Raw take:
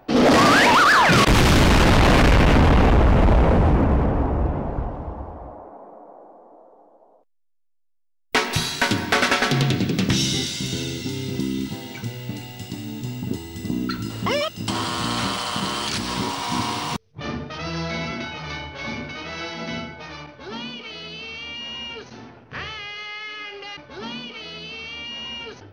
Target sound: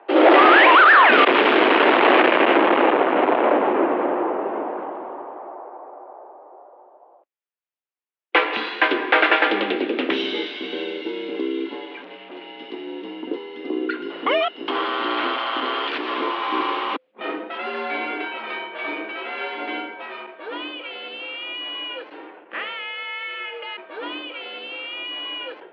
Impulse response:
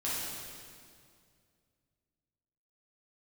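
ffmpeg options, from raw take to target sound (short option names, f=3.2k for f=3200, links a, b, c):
-filter_complex "[0:a]asettb=1/sr,asplit=3[a][b][c];[a]atrim=end=11.854[d];[b]atrim=start=11.85:end=12.48,asetpts=PTS-STARTPTS,afade=t=in:d=0.004:c=qsin,afade=t=out:st=0.626:d=0.004:c=qsin,volume=34dB,asoftclip=hard,volume=-34dB[e];[c]atrim=start=12.476[f];[d][e]acrossfade=d=0.004:c1=hsin:c2=qsin[g];[g][f]acrossfade=d=0.004:c1=qsin:c2=hsin,highpass=f=250:t=q:w=0.5412,highpass=f=250:t=q:w=1.307,lowpass=f=3.1k:t=q:w=0.5176,lowpass=f=3.1k:t=q:w=0.7071,lowpass=f=3.1k:t=q:w=1.932,afreqshift=68,volume=3.5dB"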